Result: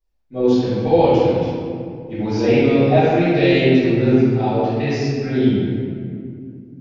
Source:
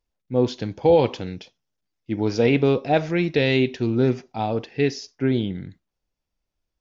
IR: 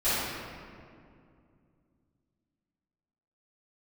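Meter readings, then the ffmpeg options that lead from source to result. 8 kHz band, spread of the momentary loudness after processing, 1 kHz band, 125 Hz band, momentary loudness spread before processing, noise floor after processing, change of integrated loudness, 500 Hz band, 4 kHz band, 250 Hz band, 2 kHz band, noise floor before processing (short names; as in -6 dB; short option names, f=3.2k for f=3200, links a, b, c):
n/a, 15 LU, +6.0 dB, +6.0 dB, 11 LU, -41 dBFS, +5.0 dB, +5.0 dB, +2.5 dB, +7.0 dB, +3.5 dB, -82 dBFS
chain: -filter_complex "[1:a]atrim=start_sample=2205[a];[0:a][a]afir=irnorm=-1:irlink=0,volume=-9dB"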